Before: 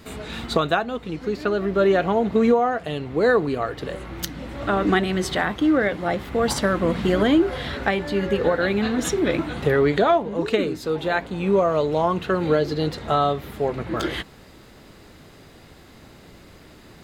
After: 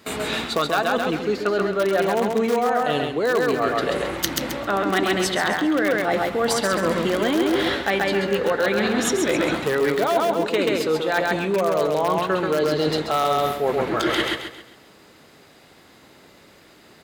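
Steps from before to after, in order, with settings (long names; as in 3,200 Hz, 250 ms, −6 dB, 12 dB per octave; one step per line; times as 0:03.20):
in parallel at −10 dB: wrap-around overflow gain 10.5 dB
on the sum: noise gate −40 dBFS, range −11 dB
high-pass filter 340 Hz 6 dB per octave
repeating echo 134 ms, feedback 36%, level −4.5 dB
reversed playback
downward compressor, threshold −25 dBFS, peak gain reduction 13 dB
reversed playback
level +7 dB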